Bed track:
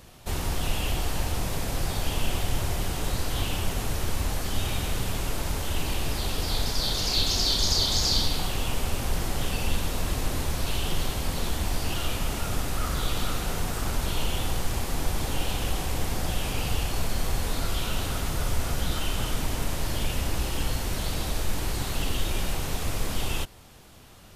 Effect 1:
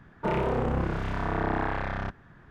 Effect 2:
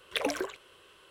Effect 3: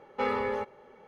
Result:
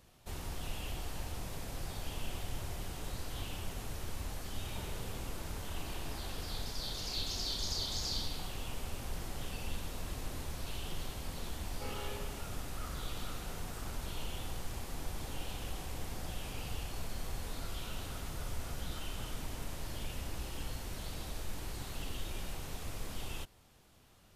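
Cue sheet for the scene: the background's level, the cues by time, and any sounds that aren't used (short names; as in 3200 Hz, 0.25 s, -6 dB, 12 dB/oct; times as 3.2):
bed track -13 dB
4.52 add 1 -17.5 dB + compressor, threshold -29 dBFS
11.62 add 3 -17.5 dB + lo-fi delay 0.152 s, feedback 35%, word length 9-bit, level -7.5 dB
not used: 2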